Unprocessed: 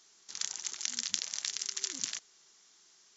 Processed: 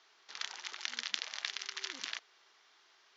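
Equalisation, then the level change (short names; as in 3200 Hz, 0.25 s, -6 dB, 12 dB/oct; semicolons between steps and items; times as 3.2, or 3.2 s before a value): BPF 550–4100 Hz; air absorption 170 m; +7.0 dB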